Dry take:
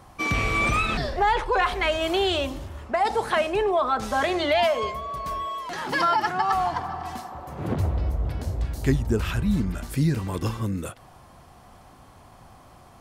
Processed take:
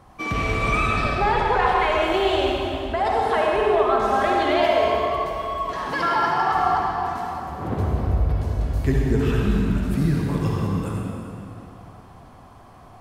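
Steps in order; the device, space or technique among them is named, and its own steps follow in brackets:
swimming-pool hall (convolution reverb RT60 2.9 s, pre-delay 53 ms, DRR −3 dB; high-shelf EQ 3,400 Hz −7 dB)
level −1 dB

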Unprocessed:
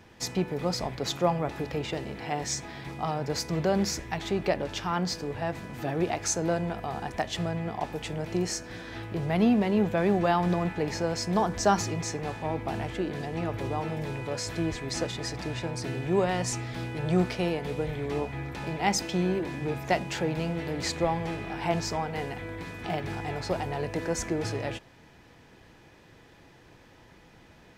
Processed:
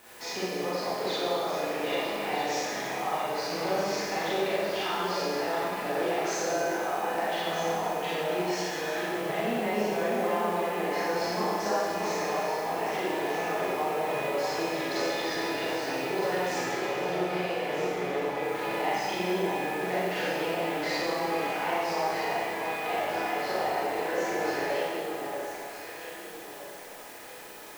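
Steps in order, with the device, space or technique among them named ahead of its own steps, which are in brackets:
baby monitor (band-pass filter 460–3,200 Hz; downward compressor, threshold −35 dBFS, peak gain reduction 15.5 dB; white noise bed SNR 19 dB)
0:16.58–0:18.40: high-shelf EQ 6,100 Hz −10 dB
delay that swaps between a low-pass and a high-pass 632 ms, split 1,400 Hz, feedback 58%, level −4.5 dB
four-comb reverb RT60 1.8 s, combs from 30 ms, DRR −9 dB

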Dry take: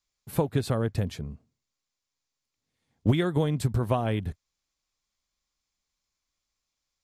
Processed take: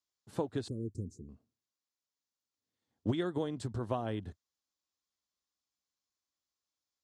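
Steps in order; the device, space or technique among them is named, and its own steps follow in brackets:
0:00.68–0:01.29: elliptic band-stop filter 380–6,500 Hz, stop band 40 dB
car door speaker (loudspeaker in its box 97–8,300 Hz, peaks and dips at 150 Hz −9 dB, 320 Hz +3 dB, 2,300 Hz −8 dB)
level −8 dB

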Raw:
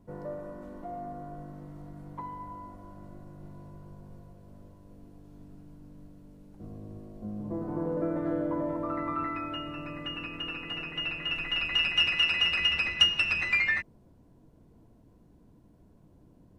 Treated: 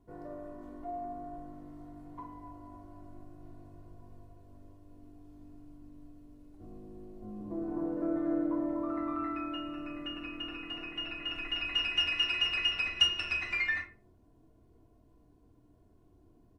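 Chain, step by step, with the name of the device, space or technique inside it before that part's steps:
microphone above a desk (comb filter 2.8 ms, depth 55%; convolution reverb RT60 0.35 s, pre-delay 22 ms, DRR 4.5 dB)
level −7 dB

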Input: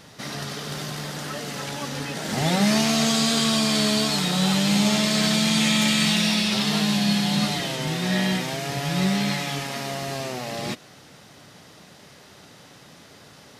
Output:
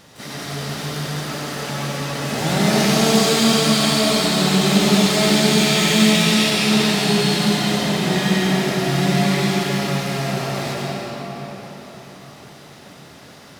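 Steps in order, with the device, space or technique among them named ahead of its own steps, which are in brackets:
shimmer-style reverb (pitch-shifted copies added +12 semitones −9 dB; convolution reverb RT60 4.9 s, pre-delay 78 ms, DRR −5 dB)
level −1 dB

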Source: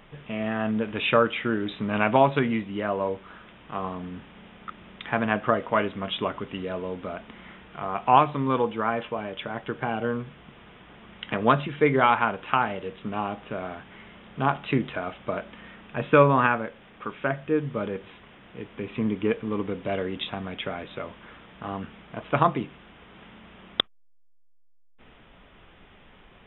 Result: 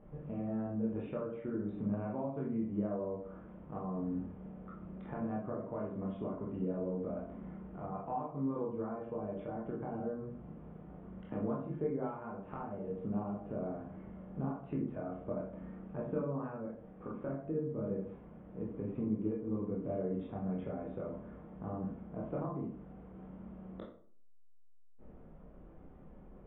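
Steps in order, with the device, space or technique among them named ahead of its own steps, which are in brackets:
television next door (downward compressor 5 to 1, threshold −32 dBFS, peak gain reduction 18 dB; low-pass filter 540 Hz 12 dB per octave; convolution reverb RT60 0.50 s, pre-delay 17 ms, DRR −4 dB)
level −4.5 dB

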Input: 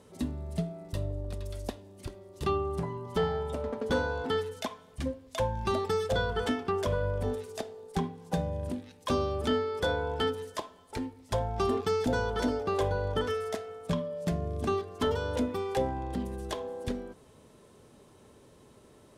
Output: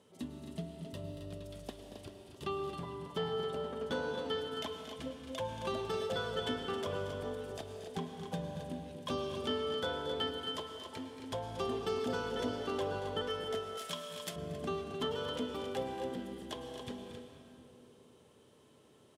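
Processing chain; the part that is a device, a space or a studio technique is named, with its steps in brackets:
stadium PA (high-pass filter 120 Hz 12 dB per octave; parametric band 3,100 Hz +8 dB 0.34 octaves; loudspeakers that aren't time-aligned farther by 79 metres −11 dB, 92 metres −8 dB; convolution reverb RT60 2.5 s, pre-delay 98 ms, DRR 5.5 dB)
0:13.77–0:14.36: spectral tilt +4 dB per octave
level −8.5 dB

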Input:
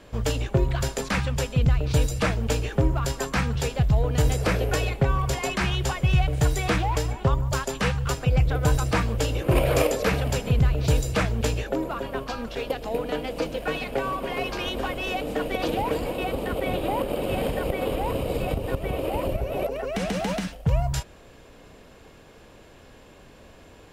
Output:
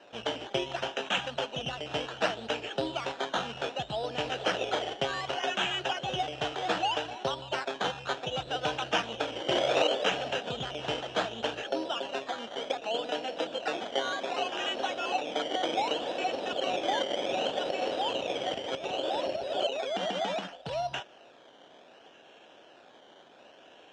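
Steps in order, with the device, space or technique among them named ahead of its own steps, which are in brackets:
circuit-bent sampling toy (sample-and-hold swept by an LFO 13×, swing 60% 0.66 Hz; loudspeaker in its box 450–5,400 Hz, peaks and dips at 460 Hz −5 dB, 730 Hz +3 dB, 1,100 Hz −8 dB, 2,100 Hz −10 dB, 3,000 Hz +9 dB, 4,600 Hz −10 dB)

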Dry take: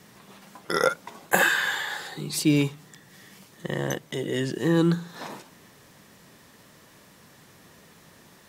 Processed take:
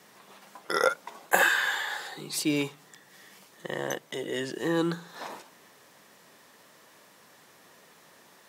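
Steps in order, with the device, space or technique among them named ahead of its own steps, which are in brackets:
filter by subtraction (in parallel: low-pass filter 670 Hz 12 dB per octave + polarity inversion)
on the sum: level −2.5 dB

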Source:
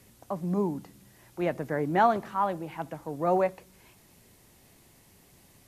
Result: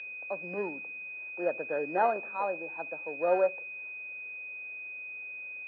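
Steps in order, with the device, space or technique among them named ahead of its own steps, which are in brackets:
toy sound module (linearly interpolated sample-rate reduction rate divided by 4×; switching amplifier with a slow clock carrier 2,500 Hz; loudspeaker in its box 500–4,900 Hz, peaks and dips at 520 Hz +6 dB, 740 Hz −3 dB, 1,100 Hz −7 dB, 1,600 Hz +8 dB, 2,300 Hz −9 dB, 4,700 Hz −7 dB)

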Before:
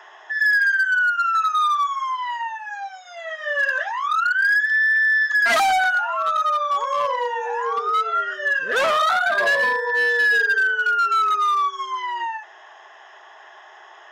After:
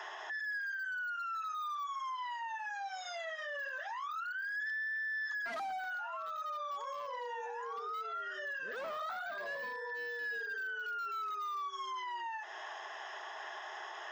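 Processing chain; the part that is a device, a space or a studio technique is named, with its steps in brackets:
broadcast voice chain (high-pass filter 110 Hz 24 dB per octave; de-essing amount 90%; downward compressor 5 to 1, threshold −35 dBFS, peak gain reduction 14.5 dB; parametric band 4,900 Hz +5 dB 0.67 octaves; brickwall limiter −34.5 dBFS, peak gain reduction 8 dB)
0:04.55–0:05.37: low shelf with overshoot 670 Hz −6.5 dB, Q 3

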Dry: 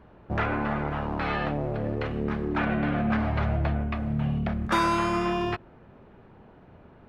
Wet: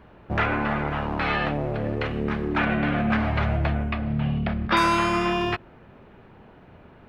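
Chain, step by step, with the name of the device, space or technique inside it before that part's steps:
0:03.92–0:04.77: Chebyshev low-pass filter 5,100 Hz, order 5
presence and air boost (parametric band 2,600 Hz +5 dB 1.7 octaves; high-shelf EQ 9,100 Hz +4 dB)
level +2 dB

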